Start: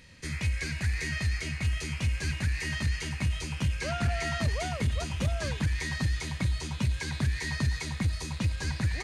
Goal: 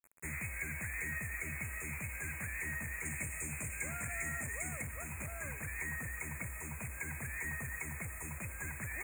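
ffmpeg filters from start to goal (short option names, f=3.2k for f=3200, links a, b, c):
-filter_complex "[0:a]asettb=1/sr,asplit=3[a][b][c];[a]atrim=end=3.054[d];[b]atrim=start=3.05:end=4.82,asetpts=PTS-STARTPTS,afade=t=in:d=0.004:c=qsin,afade=t=out:st=1.766:d=0.004:c=qsin,equalizer=f=125:t=o:w=1:g=3,equalizer=f=250:t=o:w=1:g=5,equalizer=f=1k:t=o:w=1:g=-5,equalizer=f=2k:t=o:w=1:g=4,equalizer=f=8k:t=o:w=1:g=11[e];[c]atrim=start=4.816[f];[d][e]acrossfade=d=0.004:c1=hsin:c2=qsin[g];[g][f]acrossfade=d=0.004:c1=qsin:c2=hsin,acrossover=split=410|1200[h][i][j];[h]acompressor=threshold=-38dB:ratio=4[k];[i]acompressor=threshold=-52dB:ratio=4[l];[j]acompressor=threshold=-36dB:ratio=4[m];[k][l][m]amix=inputs=3:normalize=0,acrossover=split=120|1800[n][o][p];[n]alimiter=level_in=15dB:limit=-24dB:level=0:latency=1:release=170,volume=-15dB[q];[o]aeval=exprs='0.0126*(abs(mod(val(0)/0.0126+3,4)-2)-1)':c=same[r];[p]acontrast=21[s];[q][r][s]amix=inputs=3:normalize=0,acrusher=bits=6:mix=0:aa=0.000001,asuperstop=centerf=4200:order=20:qfactor=0.95,volume=-4dB"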